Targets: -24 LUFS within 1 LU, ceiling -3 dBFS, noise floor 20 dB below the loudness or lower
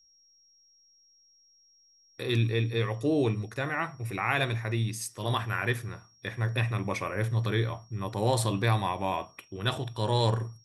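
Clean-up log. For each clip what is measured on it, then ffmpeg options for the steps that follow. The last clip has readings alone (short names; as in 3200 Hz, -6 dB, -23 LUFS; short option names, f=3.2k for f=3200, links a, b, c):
steady tone 5600 Hz; tone level -60 dBFS; loudness -29.5 LUFS; peak -11.5 dBFS; loudness target -24.0 LUFS
-> -af "bandreject=f=5.6k:w=30"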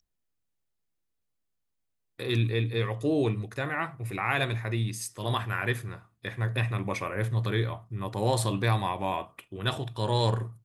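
steady tone none; loudness -29.5 LUFS; peak -11.5 dBFS; loudness target -24.0 LUFS
-> -af "volume=5.5dB"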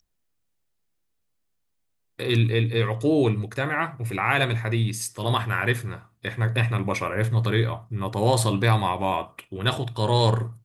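loudness -24.0 LUFS; peak -6.0 dBFS; noise floor -74 dBFS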